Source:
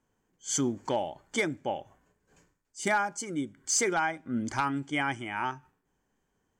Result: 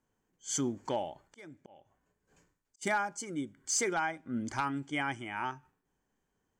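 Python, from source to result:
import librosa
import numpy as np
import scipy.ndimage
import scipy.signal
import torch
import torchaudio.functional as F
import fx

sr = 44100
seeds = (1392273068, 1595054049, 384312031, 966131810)

y = fx.auto_swell(x, sr, attack_ms=661.0, at=(1.27, 2.81), fade=0.02)
y = F.gain(torch.from_numpy(y), -4.0).numpy()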